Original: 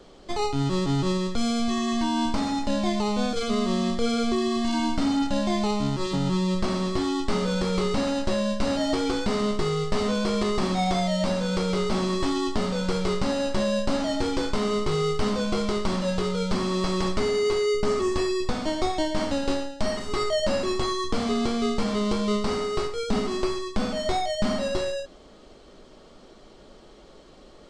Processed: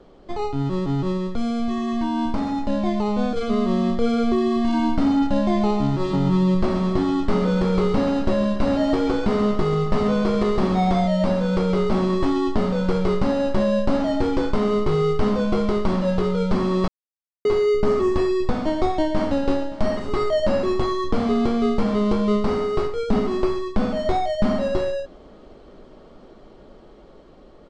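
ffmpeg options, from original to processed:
-filter_complex "[0:a]asettb=1/sr,asplit=3[s0][s1][s2];[s0]atrim=end=5.434[s3];[s1]atrim=start=5.43:end=11.06,asetpts=PTS-STARTPTS,afade=t=in:d=0.004:c=qsin,afade=t=out:st=5.626:d=0.004:c=qsin,aecho=1:1:136|272|408|544|680|816:0.251|0.141|0.0788|0.0441|0.0247|0.0138,atrim=end_sample=248283[s4];[s2]atrim=start=11.056[s5];[s3][s4]acrossfade=d=0.004:c1=hsin:c2=qsin[s6];[s6][s5]acrossfade=d=0.004:c1=qsin:c2=hsin,asplit=2[s7][s8];[s8]afade=t=in:st=19.04:d=0.01,afade=t=out:st=19.52:d=0.01,aecho=0:1:570|1140|1710|2280:0.141254|0.0706269|0.0353134|0.0176567[s9];[s7][s9]amix=inputs=2:normalize=0,asplit=3[s10][s11][s12];[s10]atrim=end=16.88,asetpts=PTS-STARTPTS,afade=t=out:st=16.876:d=0.004:c=hsin[s13];[s11]atrim=start=16.88:end=17.45,asetpts=PTS-STARTPTS,volume=0[s14];[s12]atrim=start=17.45,asetpts=PTS-STARTPTS,afade=t=in:d=0.004:c=hsin[s15];[s13][s14][s15]concat=n=3:v=0:a=1,lowpass=f=1200:p=1,dynaudnorm=f=200:g=31:m=1.58,volume=1.19"

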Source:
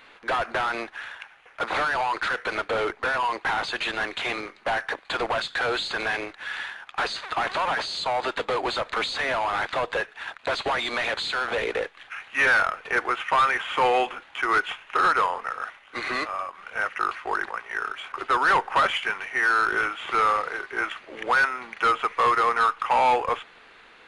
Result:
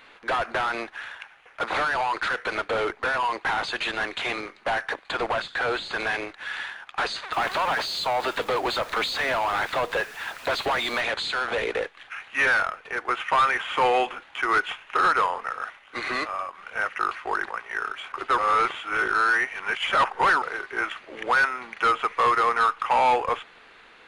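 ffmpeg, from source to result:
-filter_complex "[0:a]asettb=1/sr,asplit=3[s0][s1][s2];[s0]atrim=end=5.114[s3];[s1]atrim=start=5.11:end=5.93,asetpts=PTS-STARTPTS,afade=t=in:d=0.004:c=qsin,afade=t=out:st=0.816:d=0.004:c=qsin,acrossover=split=2600[s4][s5];[s5]acompressor=threshold=0.0141:ratio=4:attack=1:release=60[s6];[s4][s6]amix=inputs=2:normalize=0[s7];[s2]atrim=start=5.926[s8];[s3][s7]acrossfade=d=0.004:c1=hsin:c2=qsin[s9];[s9][s8]acrossfade=d=0.004:c1=qsin:c2=hsin,asettb=1/sr,asplit=3[s10][s11][s12];[s10]atrim=end=7.334[s13];[s11]atrim=start=7.33:end=11.01,asetpts=PTS-STARTPTS,afade=t=in:d=0.004:c=qsin,afade=t=out:st=3.676:d=0.004:c=qsin,aeval=exprs='val(0)+0.5*0.0119*sgn(val(0))':c=same[s14];[s12]atrim=start=11.006[s15];[s13][s14]acrossfade=d=0.004:c1=hsin:c2=qsin[s16];[s16][s15]acrossfade=d=0.004:c1=qsin:c2=hsin,asplit=4[s17][s18][s19][s20];[s17]atrim=end=13.08,asetpts=PTS-STARTPTS,afade=t=out:st=12.3:d=0.78:silence=0.421697[s21];[s18]atrim=start=13.08:end=18.382,asetpts=PTS-STARTPTS,afade=t=in:d=0.004:c=hsin:silence=0.421697[s22];[s19]atrim=start=18.378:end=20.422,asetpts=PTS-STARTPTS,areverse[s23];[s20]atrim=start=20.418[s24];[s21][s22]concat=n=2:v=0:a=1[s25];[s25][s23]acrossfade=d=0.004:c1=hsin:c2=hsin[s26];[s26][s24]acrossfade=d=0.004:c1=hsin:c2=hsin"

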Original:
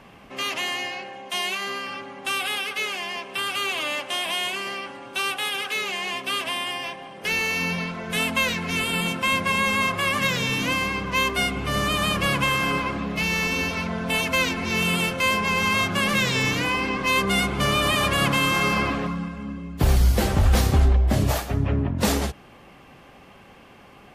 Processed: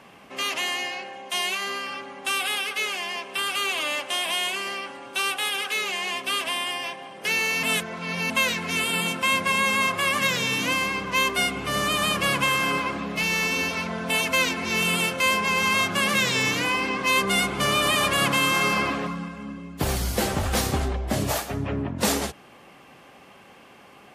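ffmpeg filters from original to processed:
-filter_complex "[0:a]asplit=3[s0][s1][s2];[s0]atrim=end=7.632[s3];[s1]atrim=start=7.628:end=8.302,asetpts=PTS-STARTPTS,areverse[s4];[s2]atrim=start=8.298[s5];[s3][s4]acrossfade=d=0.004:c1=hsin:c2=hsin[s6];[s6][s5]acrossfade=d=0.004:c1=hsin:c2=hsin,highpass=f=220:p=1,equalizer=f=8900:w=0.85:g=3.5"

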